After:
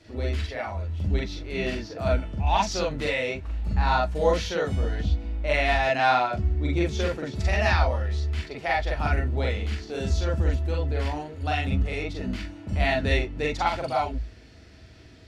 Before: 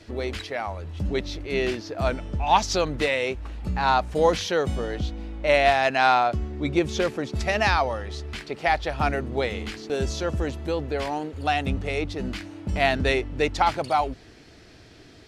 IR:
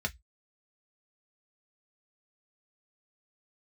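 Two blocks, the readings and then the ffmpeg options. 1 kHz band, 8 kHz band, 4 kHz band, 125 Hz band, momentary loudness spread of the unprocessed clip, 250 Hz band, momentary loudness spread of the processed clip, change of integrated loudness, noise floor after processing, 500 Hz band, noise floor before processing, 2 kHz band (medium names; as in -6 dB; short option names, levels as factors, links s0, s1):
-3.5 dB, -4.0 dB, -3.0 dB, +4.5 dB, 12 LU, -2.0 dB, 9 LU, -1.5 dB, -48 dBFS, -3.0 dB, -49 dBFS, -2.0 dB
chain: -filter_complex "[0:a]asplit=2[s0][s1];[1:a]atrim=start_sample=2205,adelay=41[s2];[s1][s2]afir=irnorm=-1:irlink=0,volume=0.794[s3];[s0][s3]amix=inputs=2:normalize=0,volume=0.447"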